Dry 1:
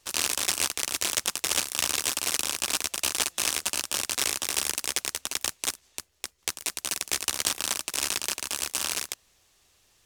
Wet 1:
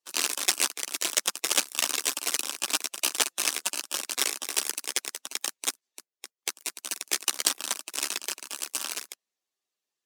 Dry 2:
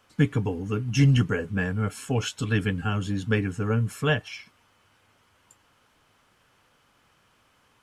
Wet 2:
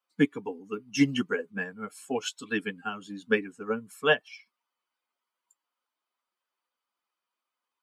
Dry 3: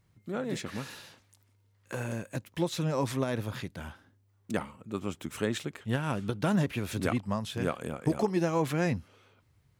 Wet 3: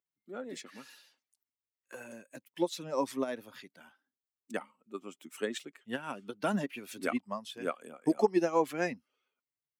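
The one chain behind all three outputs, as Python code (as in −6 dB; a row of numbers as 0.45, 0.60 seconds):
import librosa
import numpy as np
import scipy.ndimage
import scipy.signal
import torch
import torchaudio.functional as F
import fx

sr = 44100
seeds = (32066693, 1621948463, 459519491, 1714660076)

y = fx.bin_expand(x, sr, power=1.5)
y = scipy.signal.sosfilt(scipy.signal.butter(4, 230.0, 'highpass', fs=sr, output='sos'), y)
y = fx.upward_expand(y, sr, threshold_db=-39.0, expansion=1.5)
y = y * librosa.db_to_amplitude(5.0)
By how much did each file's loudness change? −1.0, −4.0, −2.5 LU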